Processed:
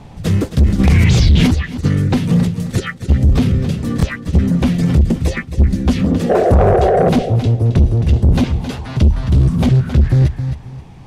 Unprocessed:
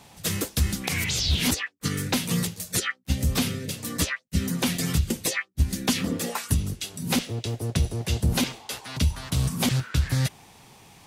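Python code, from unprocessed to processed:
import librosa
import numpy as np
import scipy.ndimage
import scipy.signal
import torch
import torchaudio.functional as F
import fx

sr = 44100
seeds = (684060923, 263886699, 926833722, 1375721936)

p1 = fx.rider(x, sr, range_db=4, speed_s=0.5)
p2 = x + (p1 * 10.0 ** (3.0 / 20.0))
p3 = fx.spec_paint(p2, sr, seeds[0], shape='noise', start_s=6.29, length_s=0.81, low_hz=340.0, high_hz=790.0, level_db=-12.0)
p4 = fx.tilt_eq(p3, sr, slope=-3.5)
p5 = p4 + fx.echo_feedback(p4, sr, ms=267, feedback_pct=26, wet_db=-12, dry=0)
p6 = 10.0 ** (-5.0 / 20.0) * np.tanh(p5 / 10.0 ** (-5.0 / 20.0))
p7 = fx.high_shelf(p6, sr, hz=11000.0, db=-10.0)
p8 = fx.buffer_glitch(p7, sr, at_s=(3.98,), block=1024, repeats=1)
p9 = fx.env_flatten(p8, sr, amount_pct=70, at=(0.78, 1.46), fade=0.02)
y = p9 * 10.0 ** (-1.0 / 20.0)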